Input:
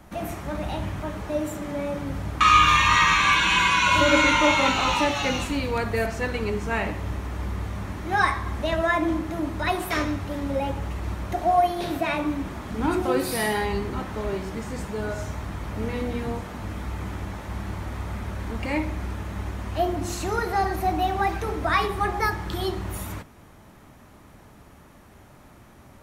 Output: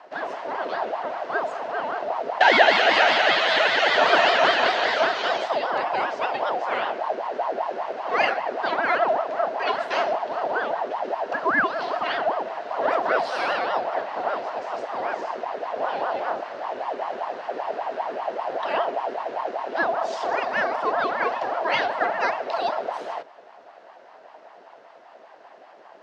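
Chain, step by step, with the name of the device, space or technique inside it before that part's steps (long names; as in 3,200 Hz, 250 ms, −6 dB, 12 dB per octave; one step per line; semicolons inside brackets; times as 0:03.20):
voice changer toy (ring modulator whose carrier an LFO sweeps 660 Hz, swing 55%, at 5.1 Hz; loudspeaker in its box 520–4,700 Hz, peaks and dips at 670 Hz +8 dB, 1,200 Hz −4 dB, 2,300 Hz −6 dB, 3,500 Hz −4 dB)
level +5 dB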